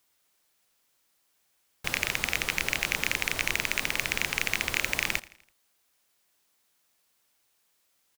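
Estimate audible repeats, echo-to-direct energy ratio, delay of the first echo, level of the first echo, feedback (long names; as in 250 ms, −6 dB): 3, −19.0 dB, 83 ms, −20.0 dB, 49%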